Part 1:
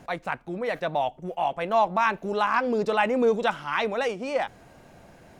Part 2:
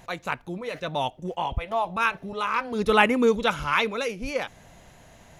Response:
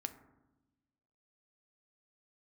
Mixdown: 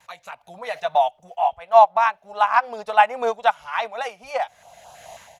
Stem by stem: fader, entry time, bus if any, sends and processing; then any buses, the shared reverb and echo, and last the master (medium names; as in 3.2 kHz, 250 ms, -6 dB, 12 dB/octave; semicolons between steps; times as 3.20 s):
-4.5 dB, 0.00 s, no send, upward expansion 2.5:1, over -31 dBFS
-1.5 dB, 4.4 ms, no send, high-pass 56 Hz; compression, threshold -31 dBFS, peak gain reduction 17 dB; step-sequenced notch 9.3 Hz 720–2000 Hz; auto duck -14 dB, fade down 1.40 s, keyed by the first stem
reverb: none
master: resonant low shelf 490 Hz -13.5 dB, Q 3; level rider gain up to 14 dB